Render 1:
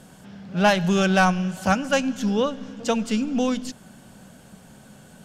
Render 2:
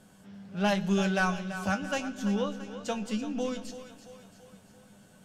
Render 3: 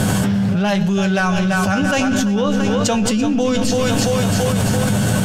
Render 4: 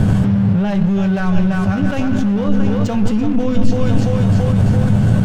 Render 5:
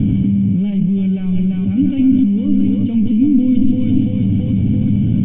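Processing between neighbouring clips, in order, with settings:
resonator 100 Hz, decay 0.15 s, harmonics all, mix 80%; split-band echo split 390 Hz, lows 0.144 s, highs 0.336 s, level -11.5 dB; gain -4 dB
bell 110 Hz +13.5 dB 0.58 oct; fast leveller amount 100%; gain +5 dB
RIAA curve playback; crossover distortion -24 dBFS; gain -5 dB
vocal tract filter i; gain +8 dB

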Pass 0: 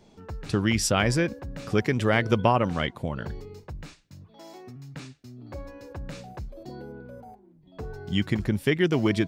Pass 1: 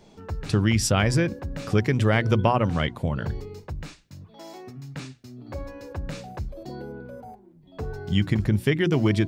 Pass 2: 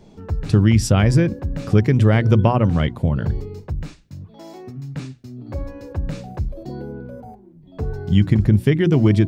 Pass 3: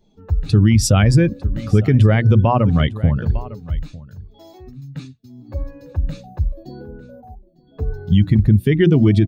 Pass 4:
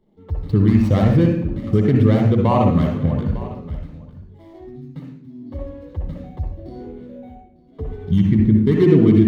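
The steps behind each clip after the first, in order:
notches 60/120/180/240/300/360 Hz; dynamic EQ 100 Hz, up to +7 dB, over -40 dBFS, Q 0.87; in parallel at +0.5 dB: compressor, threshold -28 dBFS, peak gain reduction 12.5 dB; on the sum: gain -2.5 dB
low shelf 470 Hz +9.5 dB; gain -1 dB
per-bin expansion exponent 1.5; echo 0.902 s -20.5 dB; maximiser +10.5 dB; gain -3.5 dB
median filter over 25 samples; reverb RT60 0.60 s, pre-delay 60 ms, DRR 0.5 dB; gain -8.5 dB

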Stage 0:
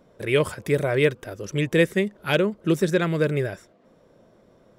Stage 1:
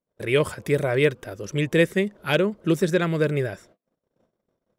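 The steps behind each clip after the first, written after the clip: gate -52 dBFS, range -33 dB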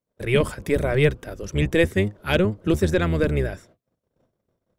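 octaver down 1 oct, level 0 dB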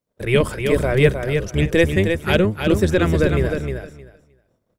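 feedback echo 0.31 s, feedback 17%, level -6 dB; gain +3 dB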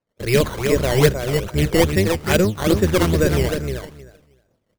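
decimation with a swept rate 12×, swing 100% 2.4 Hz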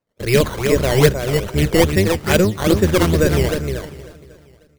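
feedback echo 0.544 s, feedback 32%, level -22 dB; gain +2 dB

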